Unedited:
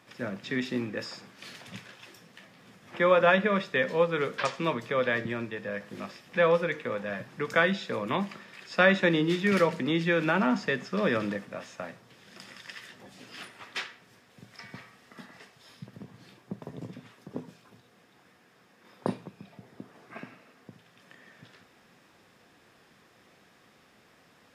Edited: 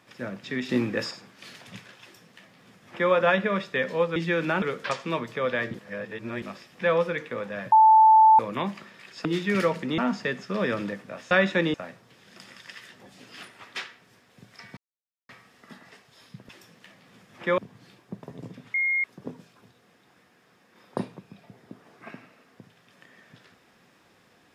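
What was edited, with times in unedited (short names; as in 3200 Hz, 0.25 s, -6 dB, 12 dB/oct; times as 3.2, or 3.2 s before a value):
0.69–1.11 gain +6.5 dB
2.02–3.11 copy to 15.97
5.28–5.96 reverse
7.26–7.93 bleep 878 Hz -11.5 dBFS
8.79–9.22 move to 11.74
9.95–10.41 move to 4.16
14.77 insert silence 0.52 s
17.13 add tone 2140 Hz -21.5 dBFS 0.30 s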